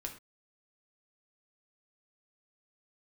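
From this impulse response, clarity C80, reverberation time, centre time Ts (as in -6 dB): 14.0 dB, not exponential, 14 ms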